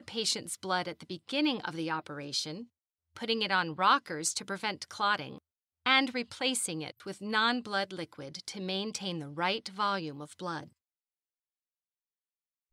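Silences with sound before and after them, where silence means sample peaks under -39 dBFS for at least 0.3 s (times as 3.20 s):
2.63–3.16 s
5.37–5.86 s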